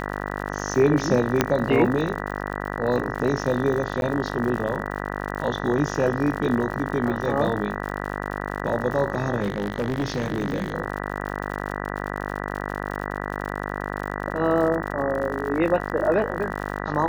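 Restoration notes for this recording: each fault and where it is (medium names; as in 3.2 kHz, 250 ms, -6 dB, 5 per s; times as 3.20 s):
buzz 50 Hz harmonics 39 -30 dBFS
crackle 76 per s -31 dBFS
1.41 s: pop -3 dBFS
4.01–4.02 s: dropout 11 ms
9.41–10.74 s: clipped -20 dBFS
15.89–15.90 s: dropout 7.8 ms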